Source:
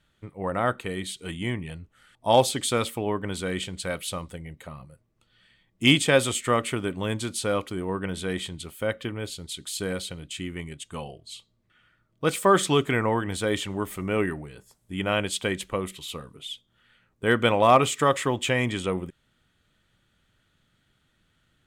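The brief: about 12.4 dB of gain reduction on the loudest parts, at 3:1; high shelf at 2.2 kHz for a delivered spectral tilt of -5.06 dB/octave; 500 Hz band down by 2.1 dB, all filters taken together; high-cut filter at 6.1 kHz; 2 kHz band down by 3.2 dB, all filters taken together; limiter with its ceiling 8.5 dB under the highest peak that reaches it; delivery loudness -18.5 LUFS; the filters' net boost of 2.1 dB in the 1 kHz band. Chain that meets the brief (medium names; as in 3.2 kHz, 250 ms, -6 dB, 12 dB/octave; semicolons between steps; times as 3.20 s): low-pass 6.1 kHz; peaking EQ 500 Hz -3.5 dB; peaking EQ 1 kHz +5.5 dB; peaking EQ 2 kHz -3.5 dB; treble shelf 2.2 kHz -4.5 dB; compression 3:1, threshold -30 dBFS; trim +19 dB; peak limiter -6.5 dBFS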